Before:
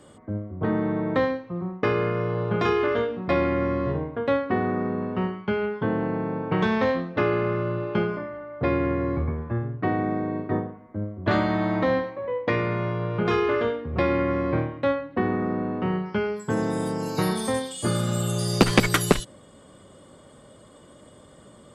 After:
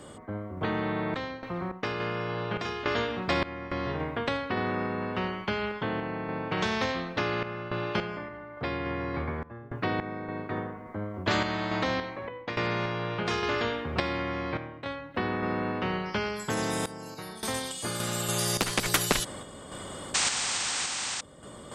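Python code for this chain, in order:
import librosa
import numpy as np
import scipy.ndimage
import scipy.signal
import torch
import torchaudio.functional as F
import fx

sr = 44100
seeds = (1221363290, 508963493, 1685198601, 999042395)

y = fx.spec_paint(x, sr, seeds[0], shape='noise', start_s=20.14, length_s=1.07, low_hz=700.0, high_hz=8900.0, level_db=-29.0)
y = fx.tremolo_random(y, sr, seeds[1], hz=3.5, depth_pct=95)
y = fx.spectral_comp(y, sr, ratio=2.0)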